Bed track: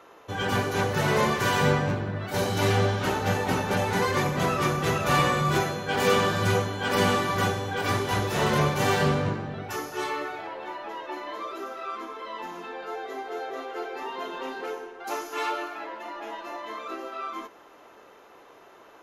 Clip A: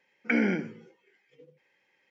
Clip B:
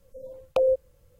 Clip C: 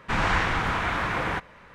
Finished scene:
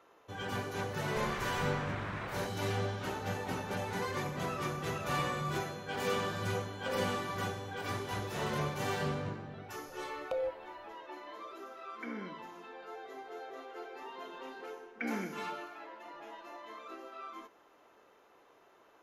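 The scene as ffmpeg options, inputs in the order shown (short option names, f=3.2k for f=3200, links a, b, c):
-filter_complex "[2:a]asplit=2[a][b];[1:a]asplit=2[c][d];[0:a]volume=-11.5dB[e];[3:a]acompressor=threshold=-27dB:ratio=6:attack=3.2:release=140:knee=1:detection=peak[f];[c]asuperstop=centerf=2500:order=4:qfactor=7[g];[d]aecho=1:1:222:0.211[h];[f]atrim=end=1.74,asetpts=PTS-STARTPTS,volume=-10.5dB,afade=t=in:d=0.004:c=hsin,afade=t=out:st=1.736:d=0.004:c=hsin,adelay=1070[i];[a]atrim=end=1.19,asetpts=PTS-STARTPTS,volume=-17.5dB,afade=t=in:d=0.004:c=hsin,afade=t=out:st=1.186:d=0.004:c=hsin,adelay=6300[j];[b]atrim=end=1.19,asetpts=PTS-STARTPTS,volume=-13dB,afade=t=in:d=0.004:c=hsin,afade=t=out:st=1.186:d=0.004:c=hsin,adelay=9750[k];[g]atrim=end=2.1,asetpts=PTS-STARTPTS,volume=-17dB,afade=t=in:d=0.004:c=hsin,afade=t=out:st=2.096:d=0.004:c=hsin,adelay=11730[l];[h]atrim=end=2.1,asetpts=PTS-STARTPTS,volume=-12dB,afade=t=in:d=0.004:c=hsin,afade=t=out:st=2.096:d=0.004:c=hsin,adelay=14710[m];[e][i][j][k][l][m]amix=inputs=6:normalize=0"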